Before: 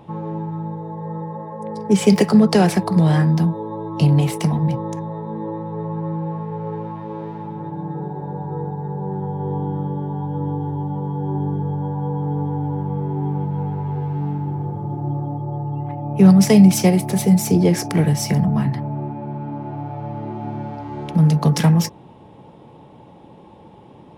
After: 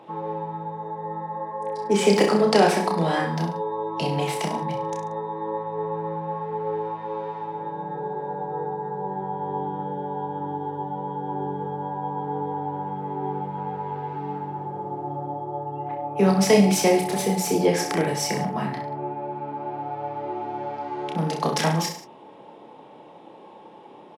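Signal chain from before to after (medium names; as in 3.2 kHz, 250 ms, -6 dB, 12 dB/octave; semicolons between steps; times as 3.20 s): high-pass 370 Hz 12 dB/octave; treble shelf 7.7 kHz -9 dB; on a send: reverse bouncing-ball echo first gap 30 ms, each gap 1.1×, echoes 5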